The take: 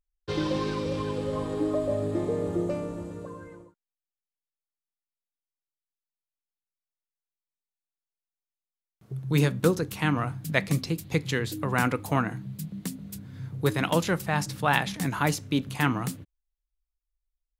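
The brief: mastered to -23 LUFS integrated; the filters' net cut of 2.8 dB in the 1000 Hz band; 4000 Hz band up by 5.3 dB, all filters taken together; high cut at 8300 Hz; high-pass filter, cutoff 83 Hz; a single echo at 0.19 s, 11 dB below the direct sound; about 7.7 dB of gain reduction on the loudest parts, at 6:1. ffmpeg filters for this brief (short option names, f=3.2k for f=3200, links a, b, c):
-af "highpass=83,lowpass=8.3k,equalizer=f=1k:t=o:g=-4,equalizer=f=4k:t=o:g=7,acompressor=threshold=-26dB:ratio=6,aecho=1:1:190:0.282,volume=9.5dB"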